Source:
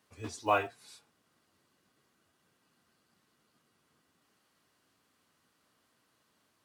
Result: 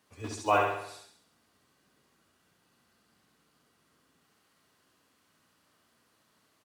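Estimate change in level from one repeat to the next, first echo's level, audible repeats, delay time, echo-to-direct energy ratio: -5.5 dB, -3.5 dB, 6, 68 ms, -2.0 dB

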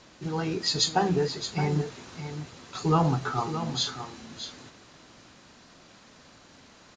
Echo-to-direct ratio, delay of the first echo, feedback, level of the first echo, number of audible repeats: -10.0 dB, 619 ms, no regular repeats, -10.0 dB, 1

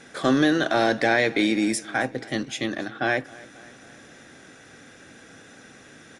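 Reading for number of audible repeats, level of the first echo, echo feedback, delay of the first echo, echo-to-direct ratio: 3, -22.0 dB, 59%, 269 ms, -20.0 dB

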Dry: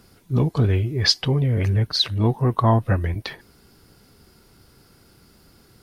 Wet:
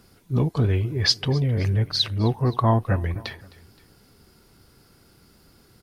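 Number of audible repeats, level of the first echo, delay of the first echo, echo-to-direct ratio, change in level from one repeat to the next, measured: 2, -21.0 dB, 261 ms, -20.0 dB, -5.0 dB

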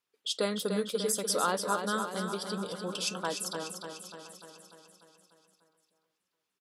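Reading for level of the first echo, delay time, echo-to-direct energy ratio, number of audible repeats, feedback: -7.0 dB, 296 ms, -5.0 dB, 10, no regular repeats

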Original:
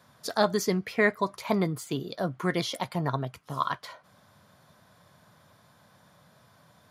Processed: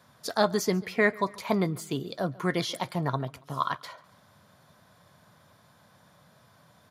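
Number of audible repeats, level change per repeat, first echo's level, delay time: 2, -7.5 dB, -22.5 dB, 140 ms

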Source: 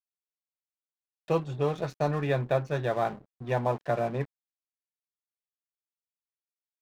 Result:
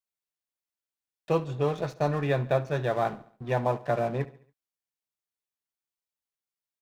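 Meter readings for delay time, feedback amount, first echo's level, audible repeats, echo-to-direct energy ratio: 70 ms, 47%, -18.5 dB, 3, -17.5 dB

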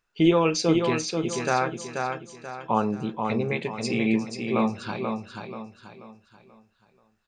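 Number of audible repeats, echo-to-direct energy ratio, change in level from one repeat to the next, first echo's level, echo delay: 4, -4.5 dB, -8.5 dB, -5.0 dB, 484 ms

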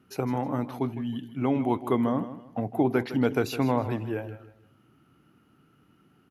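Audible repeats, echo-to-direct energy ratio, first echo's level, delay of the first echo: 3, -12.5 dB, -13.0 dB, 158 ms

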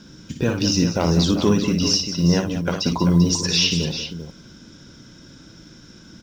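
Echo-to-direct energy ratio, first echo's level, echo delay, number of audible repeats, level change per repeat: -4.0 dB, -7.0 dB, 58 ms, 3, no regular repeats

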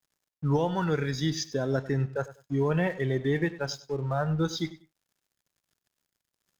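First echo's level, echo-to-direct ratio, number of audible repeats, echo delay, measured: -16.5 dB, -16.5 dB, 2, 97 ms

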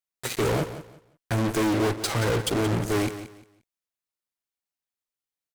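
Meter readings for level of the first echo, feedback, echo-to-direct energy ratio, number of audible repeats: -12.5 dB, 24%, -12.0 dB, 2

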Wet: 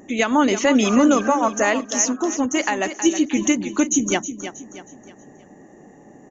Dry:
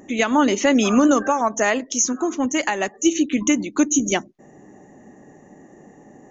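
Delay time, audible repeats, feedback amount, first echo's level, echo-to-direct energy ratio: 318 ms, 3, 39%, -11.0 dB, -10.5 dB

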